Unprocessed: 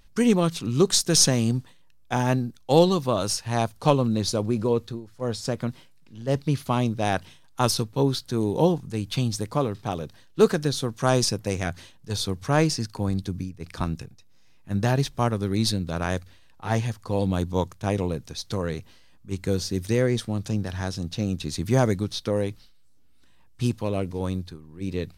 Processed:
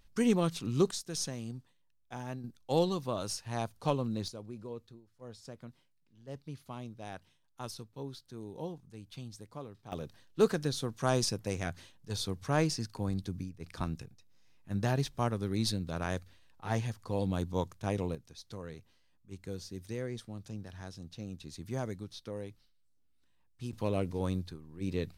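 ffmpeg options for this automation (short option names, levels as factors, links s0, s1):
-af "asetnsamples=n=441:p=0,asendcmd='0.91 volume volume -18dB;2.44 volume volume -11dB;4.28 volume volume -20dB;9.92 volume volume -8dB;18.15 volume volume -16dB;23.73 volume volume -5dB',volume=0.422"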